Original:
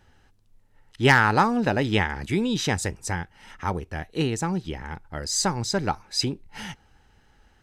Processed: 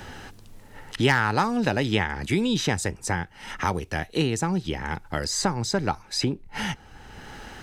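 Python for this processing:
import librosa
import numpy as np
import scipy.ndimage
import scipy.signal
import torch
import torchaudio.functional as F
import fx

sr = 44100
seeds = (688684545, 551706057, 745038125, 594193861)

y = fx.band_squash(x, sr, depth_pct=70)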